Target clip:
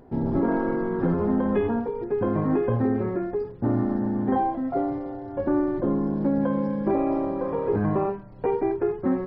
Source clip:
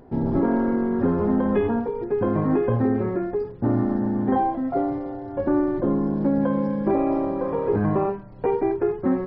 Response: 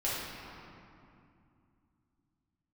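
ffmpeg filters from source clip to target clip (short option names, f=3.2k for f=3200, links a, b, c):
-filter_complex "[0:a]asettb=1/sr,asplit=3[a][b][c];[a]atrim=end=0.484[d];[b]atrim=start=0.48:end=1.14,asetpts=PTS-STARTPTS,afade=t=in:d=0.004:c=qsin,afade=t=out:st=0.656:d=0.004:c=qsin,aecho=1:1:6.2:0.74,atrim=end_sample=29106[e];[c]atrim=start=1.136[f];[d][e]acrossfade=d=0.004:c1=hsin:c2=qsin[g];[g][f]acrossfade=d=0.004:c1=qsin:c2=hsin,volume=-2dB"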